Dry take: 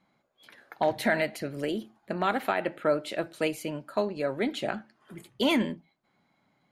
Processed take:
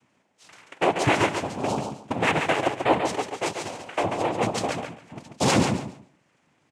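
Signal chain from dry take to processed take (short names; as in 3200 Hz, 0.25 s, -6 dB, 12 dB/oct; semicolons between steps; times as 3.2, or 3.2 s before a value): 3.17–4.03 HPF 500 Hz 12 dB/oct; noise vocoder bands 4; feedback echo 0.139 s, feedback 21%, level -6 dB; gain +4 dB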